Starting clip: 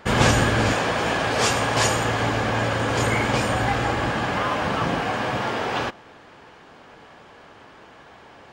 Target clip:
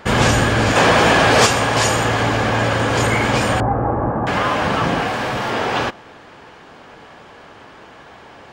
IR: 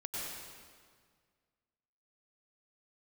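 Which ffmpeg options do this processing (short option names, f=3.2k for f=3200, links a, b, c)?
-filter_complex "[0:a]asettb=1/sr,asplit=3[a][b][c];[a]atrim=end=3.604[d];[b]atrim=start=3.6:end=4.27,asetpts=PTS-STARTPTS,afade=t=in:d=0.004:c=qsin,afade=t=out:st=0.666:d=0.004:c=qsin,lowpass=f=1.1k:w=0.5412,lowpass=f=1.1k:w=1.3066[e];[c]atrim=start=4.266[f];[d][e]acrossfade=d=0.004:c1=hsin:c2=qsin[g];[g][f]acrossfade=d=0.004:c1=qsin:c2=hsin,asplit=2[h][i];[i]alimiter=limit=-14dB:level=0:latency=1:release=31,volume=2dB[j];[h][j]amix=inputs=2:normalize=0,asplit=3[k][l][m];[k]afade=t=out:st=0.75:d=0.02[n];[l]acontrast=59,afade=t=in:st=0.75:d=0.02,afade=t=out:st=1.45:d=0.02[o];[m]afade=t=in:st=1.45:d=0.02[p];[n][o][p]amix=inputs=3:normalize=0,asettb=1/sr,asplit=3[q][r][s];[q]atrim=end=5.074[t];[r]atrim=start=5.07:end=5.51,asetpts=PTS-STARTPTS,afade=t=in:d=0.004:c=qsin,afade=t=out:st=0.436:d=0.004:c=qsin,volume=17dB,asoftclip=hard,volume=-17dB[u];[s]atrim=start=5.506[v];[t][u]acrossfade=d=0.004:c1=hsin:c2=qsin[w];[w][v]acrossfade=d=0.004:c1=qsin:c2=hsin,volume=-1.5dB"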